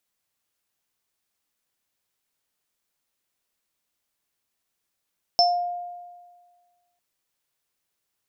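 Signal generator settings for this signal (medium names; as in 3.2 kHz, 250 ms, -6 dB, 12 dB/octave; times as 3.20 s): sine partials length 1.60 s, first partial 706 Hz, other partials 5.31 kHz, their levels 2.5 dB, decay 1.61 s, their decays 0.28 s, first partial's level -15.5 dB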